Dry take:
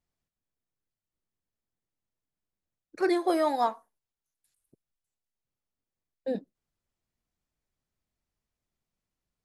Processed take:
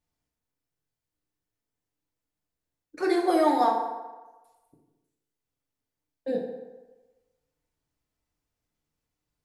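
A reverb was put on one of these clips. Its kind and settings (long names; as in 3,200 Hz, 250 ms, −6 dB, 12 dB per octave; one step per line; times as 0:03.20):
feedback delay network reverb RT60 1.2 s, low-frequency decay 0.8×, high-frequency decay 0.6×, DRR −0.5 dB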